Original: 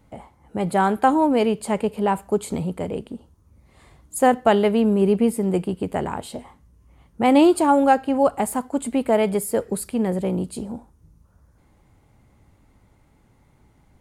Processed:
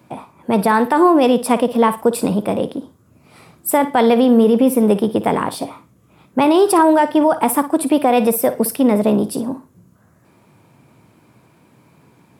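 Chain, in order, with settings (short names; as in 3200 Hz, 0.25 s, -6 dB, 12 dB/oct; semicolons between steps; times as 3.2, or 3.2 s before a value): wide varispeed 1.13×; limiter -14 dBFS, peak gain reduction 9.5 dB; HPF 120 Hz 24 dB/oct; flutter echo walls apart 9.7 m, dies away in 0.24 s; gain +8.5 dB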